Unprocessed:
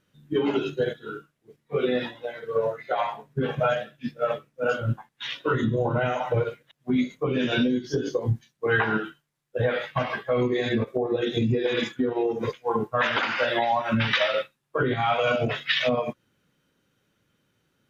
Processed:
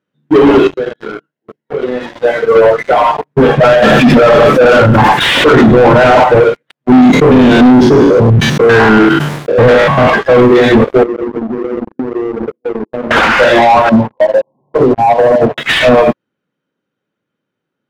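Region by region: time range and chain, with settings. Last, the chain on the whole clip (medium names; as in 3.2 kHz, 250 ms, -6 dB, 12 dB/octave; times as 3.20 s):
0.67–2.16 s: compression 3:1, threshold -44 dBFS + comb of notches 1.2 kHz
2.91–3.31 s: comb 6.6 ms, depth 76% + level held to a coarse grid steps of 10 dB
3.82–6.24 s: delay 101 ms -17.5 dB + level flattener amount 100%
6.92–10.10 s: spectrogram pixelated in time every 100 ms + bass shelf 200 Hz +10 dB + decay stretcher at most 47 dB/s
11.03–13.11 s: Butterworth band-pass 280 Hz, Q 1.3 + compression 20:1, threshold -38 dBFS + loudspeaker Doppler distortion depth 0.14 ms
13.89–15.58 s: one-bit delta coder 64 kbps, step -26.5 dBFS + brick-wall FIR low-pass 1.1 kHz + upward expansion 2.5:1, over -33 dBFS
whole clip: high-pass 190 Hz 12 dB/octave; waveshaping leveller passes 5; low-pass 1.4 kHz 6 dB/octave; trim +8.5 dB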